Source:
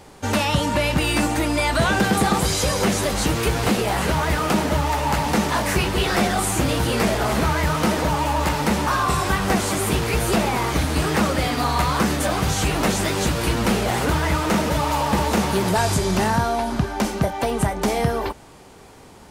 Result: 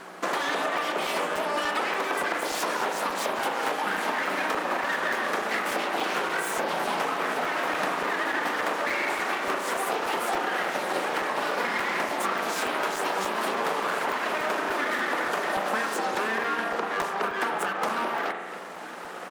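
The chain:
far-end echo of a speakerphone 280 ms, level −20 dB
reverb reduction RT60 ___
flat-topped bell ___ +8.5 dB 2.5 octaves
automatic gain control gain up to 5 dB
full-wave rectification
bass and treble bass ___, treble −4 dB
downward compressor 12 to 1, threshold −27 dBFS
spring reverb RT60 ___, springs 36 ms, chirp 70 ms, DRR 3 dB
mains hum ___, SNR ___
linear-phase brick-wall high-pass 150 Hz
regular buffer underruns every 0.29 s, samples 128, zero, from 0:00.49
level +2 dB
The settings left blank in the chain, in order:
0.58 s, 540 Hz, −14 dB, 1.8 s, 60 Hz, 23 dB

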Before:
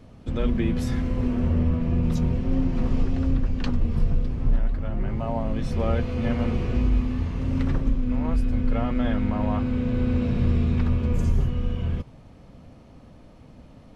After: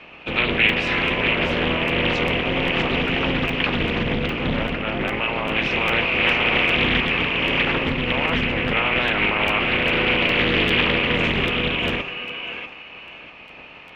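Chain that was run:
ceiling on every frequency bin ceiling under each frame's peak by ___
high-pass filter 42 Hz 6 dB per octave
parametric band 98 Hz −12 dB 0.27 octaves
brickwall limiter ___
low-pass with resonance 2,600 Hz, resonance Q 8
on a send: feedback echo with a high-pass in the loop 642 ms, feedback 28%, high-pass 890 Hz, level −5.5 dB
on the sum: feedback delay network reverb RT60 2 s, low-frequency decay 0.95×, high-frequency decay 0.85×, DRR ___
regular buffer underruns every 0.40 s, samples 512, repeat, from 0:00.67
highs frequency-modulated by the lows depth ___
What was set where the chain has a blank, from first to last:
22 dB, −14.5 dBFS, 14.5 dB, 0.47 ms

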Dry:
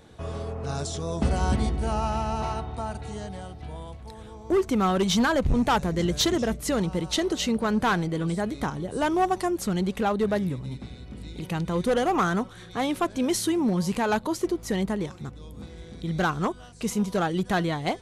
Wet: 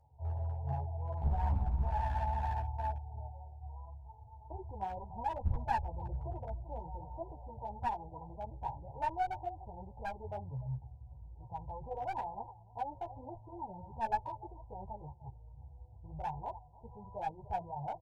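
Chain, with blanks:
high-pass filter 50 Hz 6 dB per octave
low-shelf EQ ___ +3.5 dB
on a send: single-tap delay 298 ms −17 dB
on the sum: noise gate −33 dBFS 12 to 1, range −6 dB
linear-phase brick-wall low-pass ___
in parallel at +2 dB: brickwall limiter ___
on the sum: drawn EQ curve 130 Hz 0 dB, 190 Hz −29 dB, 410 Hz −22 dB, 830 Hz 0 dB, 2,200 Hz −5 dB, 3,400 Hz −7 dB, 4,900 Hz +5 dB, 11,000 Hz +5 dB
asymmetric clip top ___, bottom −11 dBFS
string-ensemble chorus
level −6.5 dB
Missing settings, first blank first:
82 Hz, 1,000 Hz, −21 dBFS, −23 dBFS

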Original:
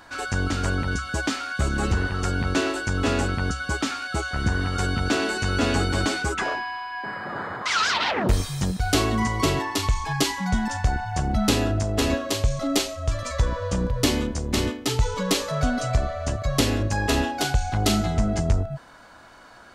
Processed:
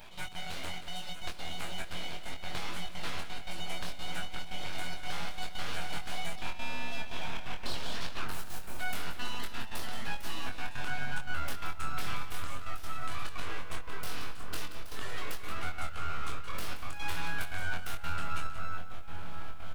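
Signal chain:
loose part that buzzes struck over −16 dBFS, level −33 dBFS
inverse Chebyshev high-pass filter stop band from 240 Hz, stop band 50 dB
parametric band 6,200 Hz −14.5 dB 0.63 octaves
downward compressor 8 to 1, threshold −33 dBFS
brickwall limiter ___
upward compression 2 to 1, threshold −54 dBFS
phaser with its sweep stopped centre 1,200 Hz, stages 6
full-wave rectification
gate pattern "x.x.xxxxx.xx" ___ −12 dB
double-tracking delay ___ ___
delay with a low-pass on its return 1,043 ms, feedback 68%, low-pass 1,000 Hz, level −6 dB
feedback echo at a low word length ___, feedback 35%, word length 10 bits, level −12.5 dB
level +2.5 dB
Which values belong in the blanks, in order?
−23.5 dBFS, 173 BPM, 23 ms, −4 dB, 178 ms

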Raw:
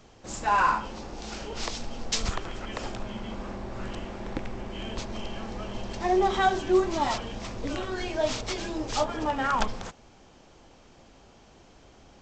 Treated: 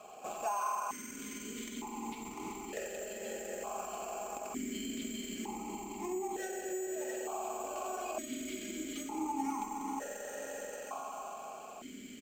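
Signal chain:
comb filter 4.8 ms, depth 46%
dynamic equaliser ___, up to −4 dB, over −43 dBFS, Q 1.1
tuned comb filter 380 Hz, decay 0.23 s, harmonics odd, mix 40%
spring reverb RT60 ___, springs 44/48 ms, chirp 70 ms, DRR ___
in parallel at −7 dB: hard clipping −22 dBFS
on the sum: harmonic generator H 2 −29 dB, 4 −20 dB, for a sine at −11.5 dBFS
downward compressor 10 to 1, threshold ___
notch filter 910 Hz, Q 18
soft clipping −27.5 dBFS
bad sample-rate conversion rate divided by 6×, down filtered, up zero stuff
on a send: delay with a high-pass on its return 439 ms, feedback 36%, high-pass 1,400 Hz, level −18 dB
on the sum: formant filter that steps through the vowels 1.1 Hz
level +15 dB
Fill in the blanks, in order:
2,300 Hz, 3.7 s, −0.5 dB, −37 dBFS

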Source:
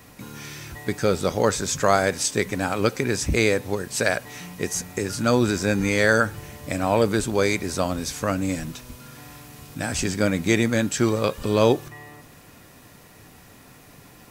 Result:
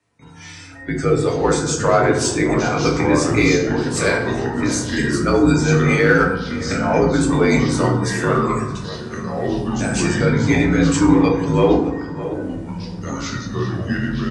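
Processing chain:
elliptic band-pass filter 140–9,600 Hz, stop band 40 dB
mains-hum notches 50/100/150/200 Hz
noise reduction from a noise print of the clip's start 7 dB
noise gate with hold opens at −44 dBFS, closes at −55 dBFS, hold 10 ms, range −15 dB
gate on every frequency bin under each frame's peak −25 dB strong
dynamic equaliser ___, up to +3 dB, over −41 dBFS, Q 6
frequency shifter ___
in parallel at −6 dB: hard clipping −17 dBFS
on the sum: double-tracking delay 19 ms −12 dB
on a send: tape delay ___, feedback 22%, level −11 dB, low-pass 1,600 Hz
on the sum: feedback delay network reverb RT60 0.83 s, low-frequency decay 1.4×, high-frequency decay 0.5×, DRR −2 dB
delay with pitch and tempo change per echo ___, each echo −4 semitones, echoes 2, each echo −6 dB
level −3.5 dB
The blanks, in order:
2,500 Hz, −54 Hz, 616 ms, 677 ms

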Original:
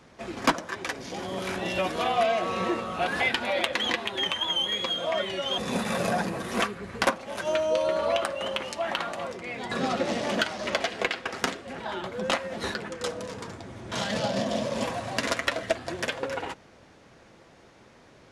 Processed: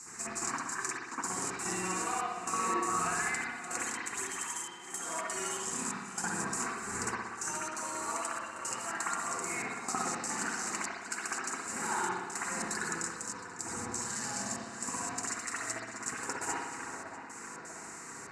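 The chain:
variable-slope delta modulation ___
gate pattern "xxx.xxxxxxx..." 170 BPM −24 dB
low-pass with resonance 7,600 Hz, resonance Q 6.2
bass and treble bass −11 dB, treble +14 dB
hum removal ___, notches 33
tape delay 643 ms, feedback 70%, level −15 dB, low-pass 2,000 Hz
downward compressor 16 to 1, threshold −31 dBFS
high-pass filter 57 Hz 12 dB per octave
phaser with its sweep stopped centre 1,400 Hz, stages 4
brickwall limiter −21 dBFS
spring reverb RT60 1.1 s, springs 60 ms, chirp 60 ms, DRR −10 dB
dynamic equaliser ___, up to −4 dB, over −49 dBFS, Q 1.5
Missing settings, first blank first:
64 kbit/s, 101.5 Hz, 2,100 Hz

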